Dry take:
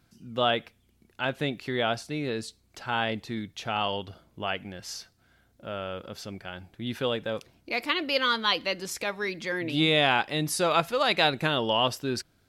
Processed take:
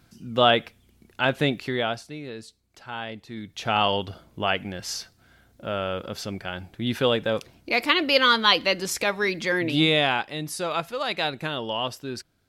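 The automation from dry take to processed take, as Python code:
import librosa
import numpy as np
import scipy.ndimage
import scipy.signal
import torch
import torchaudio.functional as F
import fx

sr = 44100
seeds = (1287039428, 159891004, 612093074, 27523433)

y = fx.gain(x, sr, db=fx.line((1.53, 6.5), (2.21, -6.0), (3.26, -6.0), (3.7, 6.5), (9.6, 6.5), (10.35, -3.5)))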